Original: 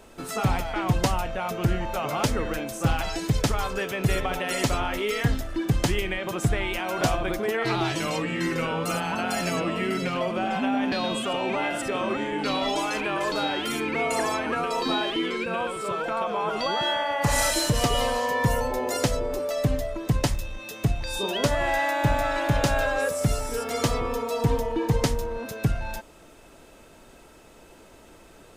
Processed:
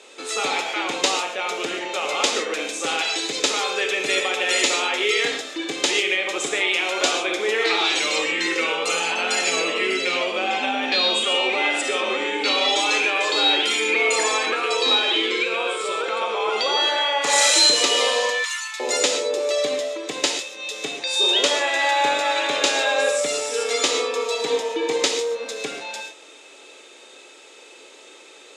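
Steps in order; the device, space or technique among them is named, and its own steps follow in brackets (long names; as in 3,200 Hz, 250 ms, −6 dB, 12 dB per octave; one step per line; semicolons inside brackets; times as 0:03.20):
0:18.30–0:18.80: elliptic high-pass filter 1,200 Hz, stop band 60 dB
phone speaker on a table (loudspeaker in its box 390–8,800 Hz, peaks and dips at 660 Hz −9 dB, 980 Hz −7 dB, 1,500 Hz −5 dB, 2,400 Hz +5 dB, 3,700 Hz +8 dB, 7,000 Hz +5 dB)
reverb whose tail is shaped and stops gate 160 ms flat, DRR 3.5 dB
level +6 dB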